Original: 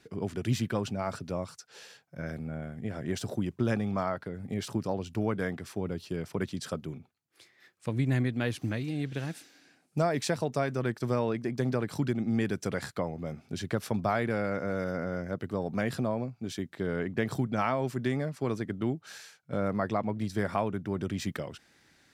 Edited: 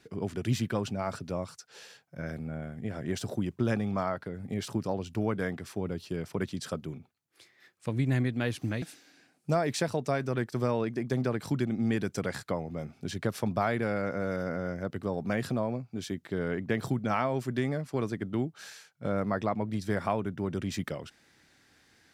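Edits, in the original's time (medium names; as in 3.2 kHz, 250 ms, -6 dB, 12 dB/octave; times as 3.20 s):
8.82–9.30 s: delete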